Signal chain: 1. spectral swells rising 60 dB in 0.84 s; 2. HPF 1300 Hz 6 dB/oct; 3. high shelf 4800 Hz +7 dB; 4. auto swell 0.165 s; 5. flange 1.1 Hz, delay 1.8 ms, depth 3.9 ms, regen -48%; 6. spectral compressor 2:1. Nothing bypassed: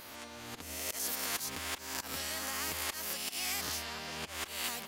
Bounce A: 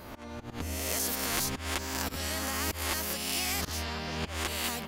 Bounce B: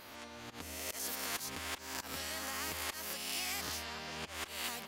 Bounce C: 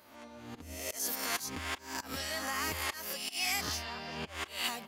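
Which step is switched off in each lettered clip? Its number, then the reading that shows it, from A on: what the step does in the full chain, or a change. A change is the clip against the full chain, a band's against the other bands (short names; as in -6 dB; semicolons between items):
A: 2, 125 Hz band +9.0 dB; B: 3, 8 kHz band -2.5 dB; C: 6, 8 kHz band -4.0 dB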